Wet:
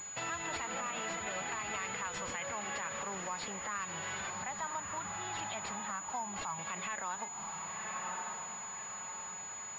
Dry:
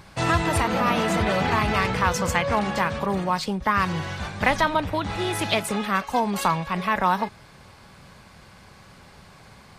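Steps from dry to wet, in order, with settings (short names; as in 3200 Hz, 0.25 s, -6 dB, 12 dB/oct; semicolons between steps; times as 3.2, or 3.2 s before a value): 4.3–6.59 EQ curve 170 Hz 0 dB, 460 Hz -15 dB, 810 Hz 0 dB, 2200 Hz -11 dB; diffused feedback echo 1.088 s, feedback 44%, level -12 dB; compressor 4:1, threshold -29 dBFS, peak gain reduction 11.5 dB; limiter -22.5 dBFS, peak gain reduction 7.5 dB; tilt +4 dB/oct; pulse-width modulation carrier 6900 Hz; gain -5.5 dB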